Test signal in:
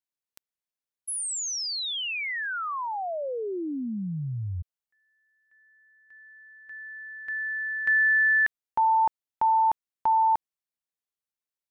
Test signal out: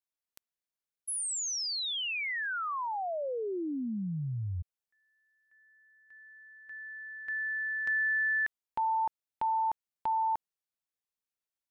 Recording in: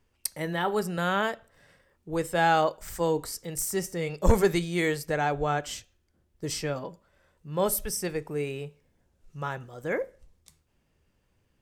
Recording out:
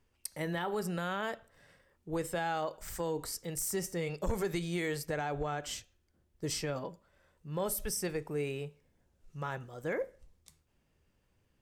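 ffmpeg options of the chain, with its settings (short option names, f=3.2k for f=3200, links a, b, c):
-af "acompressor=threshold=-24dB:ratio=6:attack=0.43:release=248:knee=1:detection=peak,volume=-3dB"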